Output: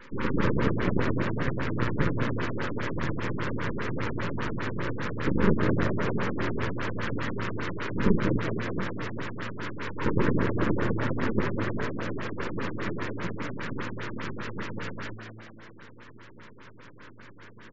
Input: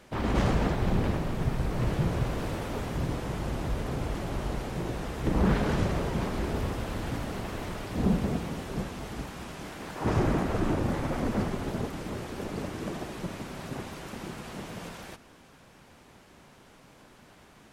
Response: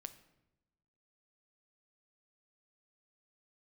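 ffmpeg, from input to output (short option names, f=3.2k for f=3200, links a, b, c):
-filter_complex "[0:a]highpass=110,equalizer=f=1.7k:t=o:w=0.95:g=9,acrossover=split=600[a][b];[a]aeval=exprs='0.158*(cos(1*acos(clip(val(0)/0.158,-1,1)))-cos(1*PI/2))+0.01*(cos(8*acos(clip(val(0)/0.158,-1,1)))-cos(8*PI/2))':c=same[c];[b]alimiter=level_in=3.5dB:limit=-24dB:level=0:latency=1:release=72,volume=-3.5dB[d];[c][d]amix=inputs=2:normalize=0,aeval=exprs='max(val(0),0)':c=same,asuperstop=centerf=700:order=8:qfactor=2.2,asplit=6[e][f][g][h][i][j];[f]adelay=204,afreqshift=110,volume=-7.5dB[k];[g]adelay=408,afreqshift=220,volume=-14.1dB[l];[h]adelay=612,afreqshift=330,volume=-20.6dB[m];[i]adelay=816,afreqshift=440,volume=-27.2dB[n];[j]adelay=1020,afreqshift=550,volume=-33.7dB[o];[e][k][l][m][n][o]amix=inputs=6:normalize=0,asplit=2[p][q];[1:a]atrim=start_sample=2205,lowpass=2.6k[r];[q][r]afir=irnorm=-1:irlink=0,volume=-4dB[s];[p][s]amix=inputs=2:normalize=0,afftfilt=real='re*lt(b*sr/1024,380*pow(7800/380,0.5+0.5*sin(2*PI*5*pts/sr)))':imag='im*lt(b*sr/1024,380*pow(7800/380,0.5+0.5*sin(2*PI*5*pts/sr)))':win_size=1024:overlap=0.75,volume=6dB"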